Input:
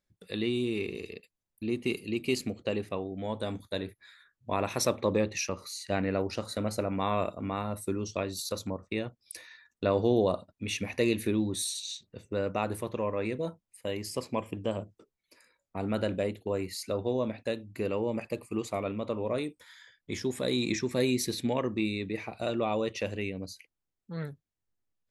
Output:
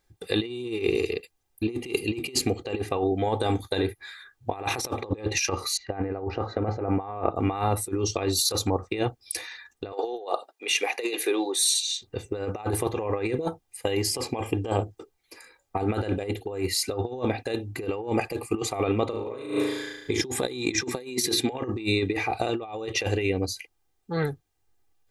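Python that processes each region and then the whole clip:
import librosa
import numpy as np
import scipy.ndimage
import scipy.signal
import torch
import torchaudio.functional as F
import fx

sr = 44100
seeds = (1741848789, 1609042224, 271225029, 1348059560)

y = fx.chain(x, sr, fx.lowpass(hz=1400.0, slope=12),
    fx.resample_bad(factor=3, down='none', up='filtered'), at=(5.77, 7.36))
y = fx.chain(y, sr, fx.highpass(hz=430.0, slope=24),
    fx.tremolo(hz=3.3, depth=0.33), at=(9.92, 12.02))
y = fx.chain(y, sr, fx.notch(hz=730.0, q=9.3),
    fx.room_flutter(wall_m=6.3, rt60_s=0.94), at=(19.08, 20.21))
y = fx.chain(y, sr, fx.highpass(hz=160.0, slope=12),
    fx.hum_notches(base_hz=60, count=6), at=(20.81, 21.52))
y = fx.peak_eq(y, sr, hz=800.0, db=6.0, octaves=0.42)
y = y + 0.63 * np.pad(y, (int(2.5 * sr / 1000.0), 0))[:len(y)]
y = fx.over_compress(y, sr, threshold_db=-33.0, ratio=-0.5)
y = F.gain(torch.from_numpy(y), 7.0).numpy()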